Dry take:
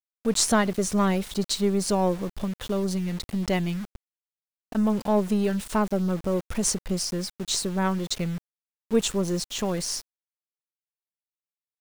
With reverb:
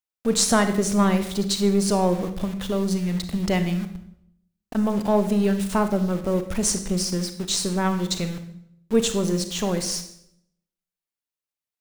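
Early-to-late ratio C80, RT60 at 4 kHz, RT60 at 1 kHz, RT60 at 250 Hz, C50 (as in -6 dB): 13.0 dB, 0.65 s, 0.70 s, 0.85 s, 10.0 dB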